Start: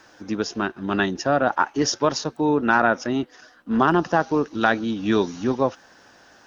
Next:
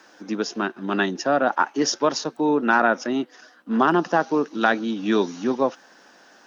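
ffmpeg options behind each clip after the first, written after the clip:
ffmpeg -i in.wav -af "highpass=frequency=180:width=0.5412,highpass=frequency=180:width=1.3066" out.wav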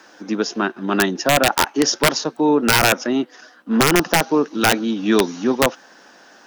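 ffmpeg -i in.wav -af "aeval=exprs='(mod(3.16*val(0)+1,2)-1)/3.16':channel_layout=same,volume=4.5dB" out.wav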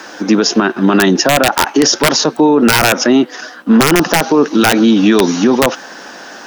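ffmpeg -i in.wav -af "alimiter=level_in=16.5dB:limit=-1dB:release=50:level=0:latency=1,volume=-1dB" out.wav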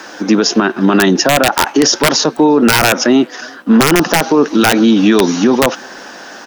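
ffmpeg -i in.wav -filter_complex "[0:a]asplit=2[link_01][link_02];[link_02]adelay=350,highpass=300,lowpass=3400,asoftclip=type=hard:threshold=-10dB,volume=-27dB[link_03];[link_01][link_03]amix=inputs=2:normalize=0" out.wav

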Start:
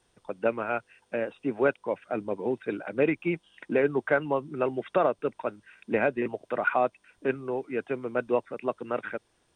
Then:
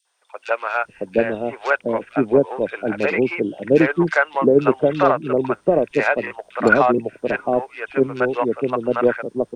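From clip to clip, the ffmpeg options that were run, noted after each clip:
ffmpeg -i in.wav -filter_complex "[0:a]aeval=exprs='0.266*(cos(1*acos(clip(val(0)/0.266,-1,1)))-cos(1*PI/2))+0.00841*(cos(7*acos(clip(val(0)/0.266,-1,1)))-cos(7*PI/2))':channel_layout=same,acrossover=split=630|2800[link_01][link_02][link_03];[link_02]adelay=50[link_04];[link_01]adelay=720[link_05];[link_05][link_04][link_03]amix=inputs=3:normalize=0,dynaudnorm=framelen=130:gausssize=5:maxgain=7dB,volume=5dB" out.wav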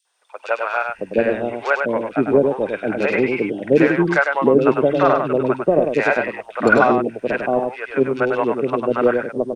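ffmpeg -i in.wav -af "aecho=1:1:100:0.562" out.wav

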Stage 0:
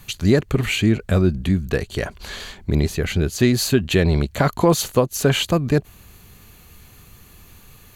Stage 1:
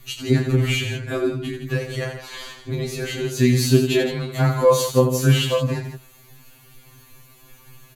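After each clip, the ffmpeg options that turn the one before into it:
ffmpeg -i in.wav -af "aecho=1:1:29.15|87.46|166.2:0.501|0.398|0.316,afftfilt=real='re*2.45*eq(mod(b,6),0)':imag='im*2.45*eq(mod(b,6),0)':win_size=2048:overlap=0.75,volume=-1dB" out.wav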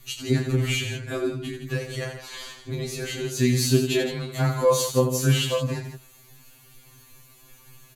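ffmpeg -i in.wav -af "equalizer=frequency=7700:width=0.56:gain=5,volume=-4.5dB" out.wav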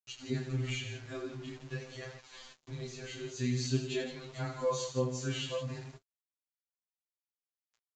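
ffmpeg -i in.wav -af "aeval=exprs='val(0)*gte(abs(val(0)),0.0133)':channel_layout=same,flanger=delay=9.2:depth=9.9:regen=-26:speed=0.46:shape=triangular,volume=-8.5dB" -ar 16000 -c:a pcm_mulaw out.wav

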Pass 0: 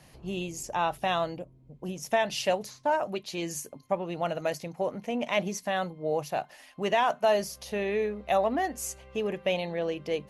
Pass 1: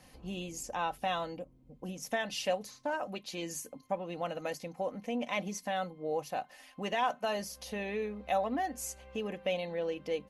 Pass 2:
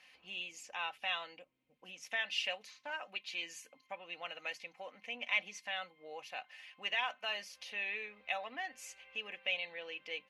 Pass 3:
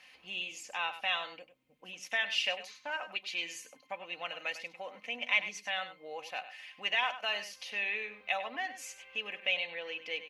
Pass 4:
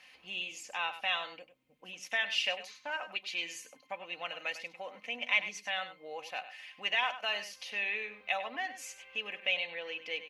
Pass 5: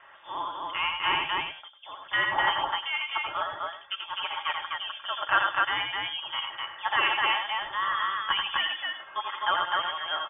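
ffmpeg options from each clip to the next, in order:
ffmpeg -i in.wav -filter_complex "[0:a]aecho=1:1:3.9:0.5,asplit=2[link_01][link_02];[link_02]acompressor=threshold=-37dB:ratio=6,volume=-2.5dB[link_03];[link_01][link_03]amix=inputs=2:normalize=0,volume=-8dB" out.wav
ffmpeg -i in.wav -af "bandpass=frequency=2500:width_type=q:width=2.4:csg=0,volume=6.5dB" out.wav
ffmpeg -i in.wav -filter_complex "[0:a]asplit=2[link_01][link_02];[link_02]adelay=99.13,volume=-12dB,highshelf=frequency=4000:gain=-2.23[link_03];[link_01][link_03]amix=inputs=2:normalize=0,volume=4.5dB" out.wav
ffmpeg -i in.wav -af anull out.wav
ffmpeg -i in.wav -af "aecho=1:1:84.55|253.6:0.562|0.794,lowpass=frequency=3100:width_type=q:width=0.5098,lowpass=frequency=3100:width_type=q:width=0.6013,lowpass=frequency=3100:width_type=q:width=0.9,lowpass=frequency=3100:width_type=q:width=2.563,afreqshift=-3700,volume=5.5dB" out.wav

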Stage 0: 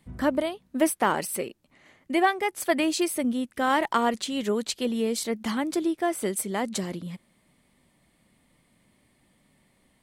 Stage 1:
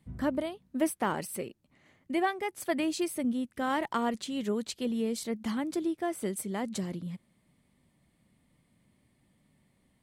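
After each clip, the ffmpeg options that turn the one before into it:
ffmpeg -i in.wav -af "equalizer=frequency=110:width_type=o:width=2.6:gain=8,volume=-8dB" out.wav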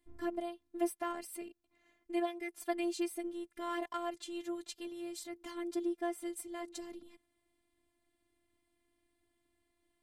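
ffmpeg -i in.wav -af "afftfilt=real='hypot(re,im)*cos(PI*b)':imag='0':win_size=512:overlap=0.75,volume=-4dB" out.wav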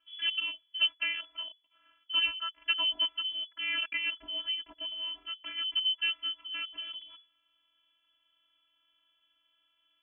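ffmpeg -i in.wav -af "lowpass=frequency=2900:width_type=q:width=0.5098,lowpass=frequency=2900:width_type=q:width=0.6013,lowpass=frequency=2900:width_type=q:width=0.9,lowpass=frequency=2900:width_type=q:width=2.563,afreqshift=-3400,volume=5.5dB" out.wav

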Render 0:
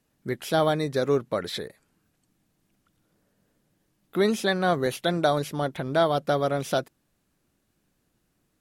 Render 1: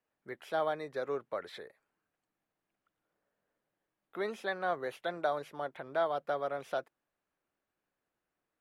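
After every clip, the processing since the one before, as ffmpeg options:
ffmpeg -i in.wav -filter_complex "[0:a]acrossover=split=430 2600:gain=0.158 1 0.2[link_01][link_02][link_03];[link_01][link_02][link_03]amix=inputs=3:normalize=0,volume=-7.5dB" out.wav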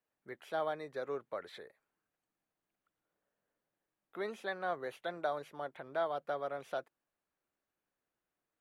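ffmpeg -i in.wav -af "bandreject=frequency=5200:width=17,volume=-3.5dB" out.wav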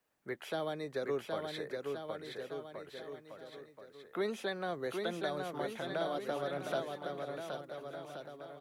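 ffmpeg -i in.wav -filter_complex "[0:a]acrossover=split=390|3000[link_01][link_02][link_03];[link_02]acompressor=threshold=-48dB:ratio=6[link_04];[link_01][link_04][link_03]amix=inputs=3:normalize=0,asplit=2[link_05][link_06];[link_06]aecho=0:1:770|1424|1981|2454|2856:0.631|0.398|0.251|0.158|0.1[link_07];[link_05][link_07]amix=inputs=2:normalize=0,volume=8dB" out.wav

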